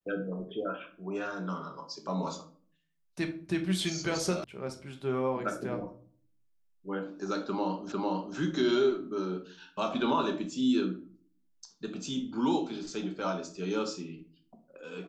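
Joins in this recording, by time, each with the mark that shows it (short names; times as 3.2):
4.44 sound cut off
7.92 repeat of the last 0.45 s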